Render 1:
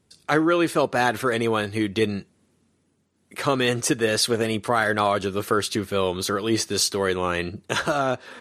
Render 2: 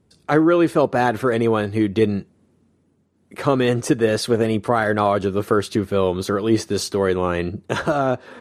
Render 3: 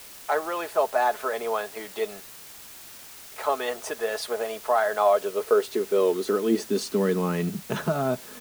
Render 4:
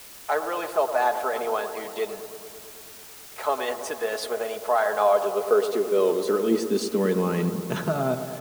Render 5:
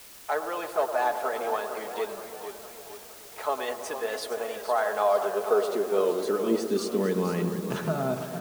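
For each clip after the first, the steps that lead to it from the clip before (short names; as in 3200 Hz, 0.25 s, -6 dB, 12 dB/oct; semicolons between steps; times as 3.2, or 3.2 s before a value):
tilt shelf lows +6 dB, about 1400 Hz
comb 4.7 ms, depth 53%; high-pass sweep 700 Hz -> 140 Hz, 4.9–7.72; requantised 6-bit, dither triangular; gain -8.5 dB
analogue delay 0.109 s, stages 1024, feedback 75%, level -10 dB
warbling echo 0.461 s, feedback 51%, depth 124 cents, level -10 dB; gain -3.5 dB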